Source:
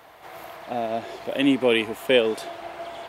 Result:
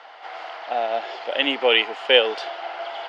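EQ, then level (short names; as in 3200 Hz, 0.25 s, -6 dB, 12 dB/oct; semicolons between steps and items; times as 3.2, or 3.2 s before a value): speaker cabinet 490–5600 Hz, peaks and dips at 510 Hz +4 dB, 800 Hz +9 dB, 1400 Hz +8 dB, 2000 Hz +5 dB, 3000 Hz +9 dB, 4800 Hz +7 dB; 0.0 dB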